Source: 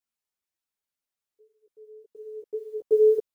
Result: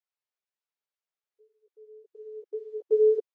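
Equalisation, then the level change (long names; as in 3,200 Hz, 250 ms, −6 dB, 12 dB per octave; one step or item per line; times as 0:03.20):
linear-phase brick-wall high-pass 350 Hz
high-frequency loss of the air 120 metres
−2.0 dB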